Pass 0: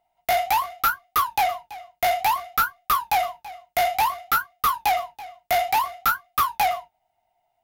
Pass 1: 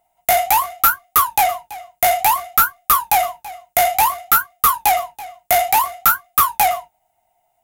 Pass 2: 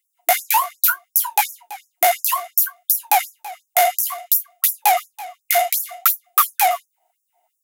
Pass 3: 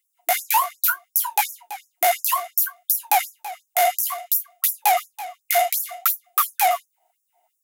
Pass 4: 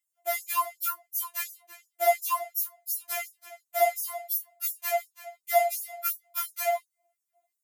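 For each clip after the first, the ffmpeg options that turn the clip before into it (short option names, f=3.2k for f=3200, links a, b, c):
-af "highshelf=f=6.1k:t=q:w=1.5:g=7.5,volume=5.5dB"
-af "afftfilt=real='re*gte(b*sr/1024,290*pow(5500/290,0.5+0.5*sin(2*PI*2.8*pts/sr)))':imag='im*gte(b*sr/1024,290*pow(5500/290,0.5+0.5*sin(2*PI*2.8*pts/sr)))':win_size=1024:overlap=0.75"
-af "alimiter=limit=-7.5dB:level=0:latency=1:release=127"
-af "afftfilt=real='re*4*eq(mod(b,16),0)':imag='im*4*eq(mod(b,16),0)':win_size=2048:overlap=0.75,volume=-7dB"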